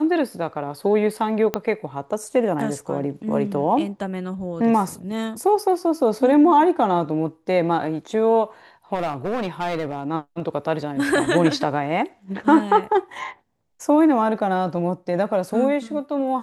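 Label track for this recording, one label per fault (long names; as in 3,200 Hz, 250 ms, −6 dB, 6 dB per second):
1.540000	1.540000	click −8 dBFS
8.940000	10.080000	clipping −20 dBFS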